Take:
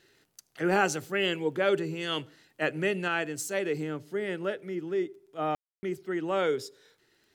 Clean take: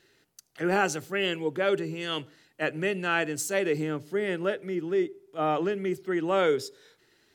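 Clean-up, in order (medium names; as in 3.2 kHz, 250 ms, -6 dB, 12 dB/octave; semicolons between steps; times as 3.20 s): de-click; room tone fill 5.55–5.83 s; gain correction +3.5 dB, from 3.08 s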